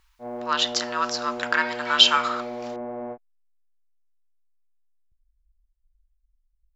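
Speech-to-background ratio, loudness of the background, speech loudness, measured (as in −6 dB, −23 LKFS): 12.5 dB, −34.0 LKFS, −21.5 LKFS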